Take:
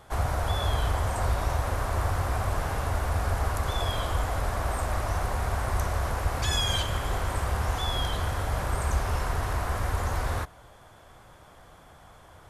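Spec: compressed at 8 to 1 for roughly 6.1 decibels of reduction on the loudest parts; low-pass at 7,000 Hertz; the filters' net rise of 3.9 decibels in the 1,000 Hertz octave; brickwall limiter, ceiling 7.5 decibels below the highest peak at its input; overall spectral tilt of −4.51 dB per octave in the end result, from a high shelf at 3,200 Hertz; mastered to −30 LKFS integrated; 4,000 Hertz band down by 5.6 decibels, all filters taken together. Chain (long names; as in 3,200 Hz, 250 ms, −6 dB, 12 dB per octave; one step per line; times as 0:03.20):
low-pass filter 7,000 Hz
parametric band 1,000 Hz +5.5 dB
high-shelf EQ 3,200 Hz −3.5 dB
parametric band 4,000 Hz −5 dB
downward compressor 8 to 1, threshold −27 dBFS
level +6 dB
brickwall limiter −20.5 dBFS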